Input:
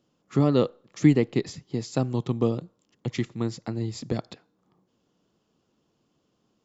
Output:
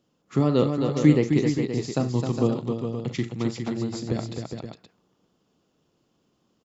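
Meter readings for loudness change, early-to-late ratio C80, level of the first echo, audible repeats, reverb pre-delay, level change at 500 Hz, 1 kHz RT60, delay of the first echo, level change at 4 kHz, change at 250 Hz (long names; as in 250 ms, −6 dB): +2.0 dB, no reverb audible, −11.5 dB, 4, no reverb audible, +2.0 dB, no reverb audible, 40 ms, +2.0 dB, +2.5 dB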